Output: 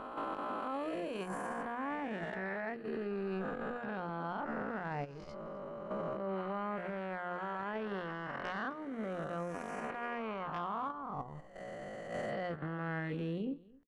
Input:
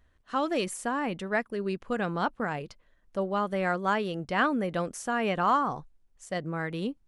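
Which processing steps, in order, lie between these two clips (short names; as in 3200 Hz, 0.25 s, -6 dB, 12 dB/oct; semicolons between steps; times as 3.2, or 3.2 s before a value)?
spectral swells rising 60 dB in 1.48 s; level quantiser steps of 11 dB; tone controls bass +2 dB, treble -7 dB; compressor 2.5:1, threshold -38 dBFS, peak gain reduction 13 dB; added harmonics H 2 -12 dB, 4 -33 dB, 5 -10 dB, 8 -32 dB, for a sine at -18.5 dBFS; tempo 0.51×; high shelf 3200 Hz -10.5 dB; notches 60/120/180/240/300/360/420/480 Hz; echo 0.257 s -21.5 dB; gate -32 dBFS, range -6 dB; limiter -29 dBFS, peak gain reduction 8 dB; gain -1.5 dB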